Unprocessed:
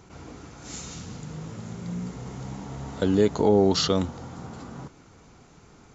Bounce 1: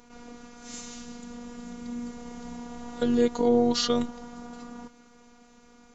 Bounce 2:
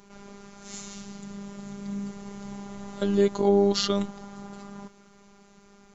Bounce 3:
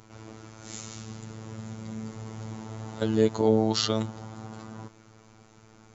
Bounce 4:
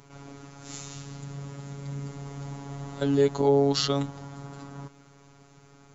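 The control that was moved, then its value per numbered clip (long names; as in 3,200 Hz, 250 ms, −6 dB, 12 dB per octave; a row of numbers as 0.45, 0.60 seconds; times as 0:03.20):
phases set to zero, frequency: 240, 200, 110, 140 Hertz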